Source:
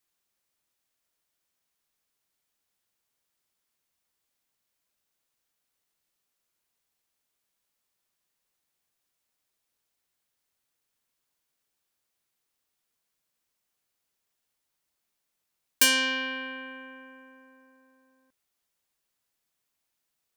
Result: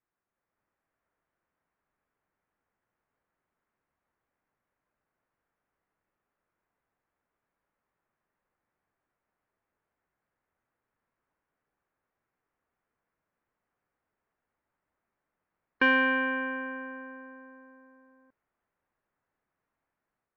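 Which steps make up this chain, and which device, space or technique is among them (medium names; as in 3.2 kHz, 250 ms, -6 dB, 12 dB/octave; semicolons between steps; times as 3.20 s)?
action camera in a waterproof case (low-pass 1.8 kHz 24 dB/octave; level rider gain up to 6 dB; AAC 64 kbps 16 kHz)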